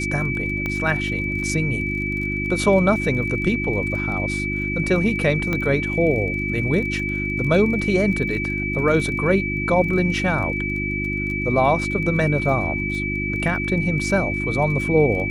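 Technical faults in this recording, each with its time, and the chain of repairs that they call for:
crackle 24/s -30 dBFS
hum 50 Hz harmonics 7 -27 dBFS
tone 2300 Hz -25 dBFS
0.66 pop -13 dBFS
5.53 pop -11 dBFS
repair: de-click; de-hum 50 Hz, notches 7; notch 2300 Hz, Q 30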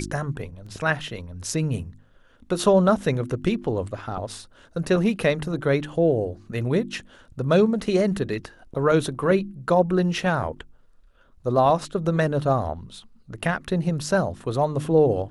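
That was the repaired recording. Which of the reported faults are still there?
0.66 pop

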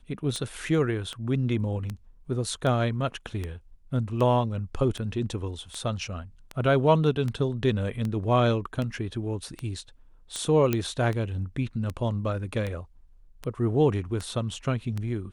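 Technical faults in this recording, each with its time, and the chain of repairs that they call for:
tick 78 rpm -19 dBFS
10.73 pop -11 dBFS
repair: de-click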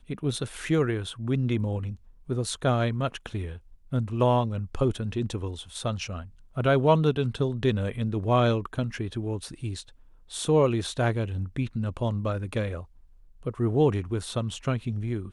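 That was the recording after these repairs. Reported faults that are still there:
10.73 pop

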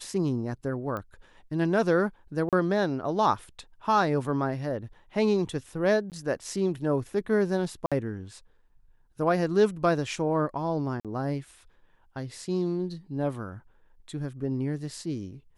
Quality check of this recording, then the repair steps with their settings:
0.97 pop -22 dBFS
2.49–2.53 gap 37 ms
6.1–6.12 gap 18 ms
7.86–7.92 gap 56 ms
11–11.05 gap 47 ms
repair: de-click; interpolate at 2.49, 37 ms; interpolate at 6.1, 18 ms; interpolate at 7.86, 56 ms; interpolate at 11, 47 ms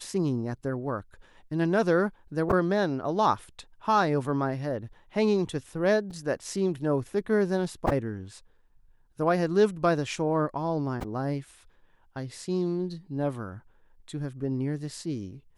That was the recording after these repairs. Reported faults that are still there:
none

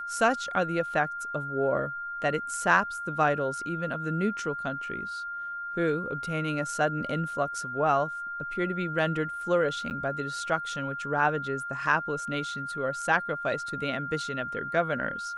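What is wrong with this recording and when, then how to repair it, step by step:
tone 1400 Hz -33 dBFS
9.9–9.91 gap 9.2 ms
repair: notch 1400 Hz, Q 30; interpolate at 9.9, 9.2 ms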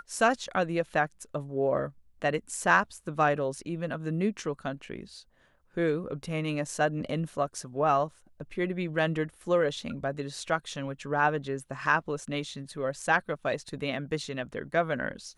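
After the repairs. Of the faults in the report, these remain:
none

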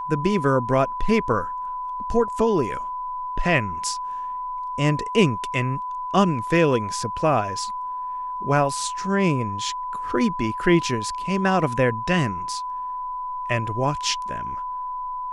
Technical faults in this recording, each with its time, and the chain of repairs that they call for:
tone 1000 Hz -27 dBFS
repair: notch 1000 Hz, Q 30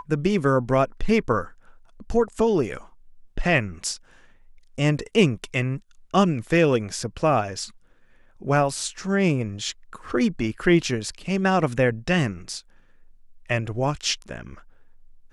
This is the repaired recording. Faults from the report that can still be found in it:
none

